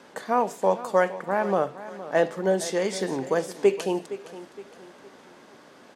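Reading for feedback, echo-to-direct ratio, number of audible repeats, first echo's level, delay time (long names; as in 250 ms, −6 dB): 39%, −14.5 dB, 3, −15.0 dB, 465 ms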